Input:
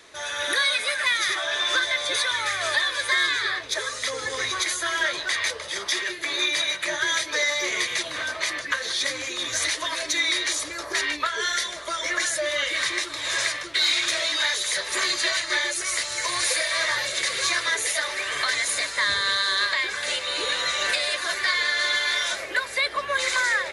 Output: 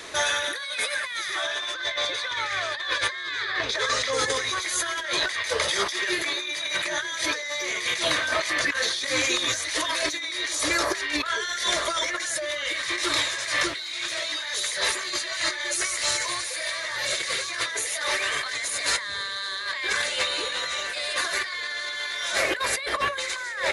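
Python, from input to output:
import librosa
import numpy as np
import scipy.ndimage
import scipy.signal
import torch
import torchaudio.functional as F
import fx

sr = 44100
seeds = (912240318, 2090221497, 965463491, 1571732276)

y = fx.lowpass(x, sr, hz=5300.0, slope=12, at=(1.74, 4.13))
y = fx.over_compress(y, sr, threshold_db=-33.0, ratio=-1.0)
y = y * 10.0 ** (4.5 / 20.0)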